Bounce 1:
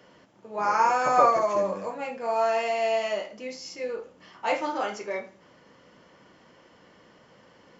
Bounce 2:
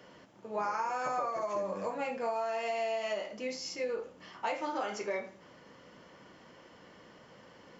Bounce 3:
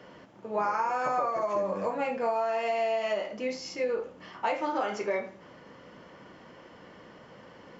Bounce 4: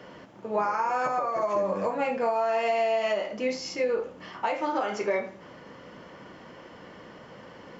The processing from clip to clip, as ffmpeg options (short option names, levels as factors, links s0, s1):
-af "acompressor=threshold=0.0316:ratio=16"
-af "highshelf=f=4700:g=-10.5,volume=1.88"
-af "alimiter=limit=0.0891:level=0:latency=1:release=306,volume=1.58"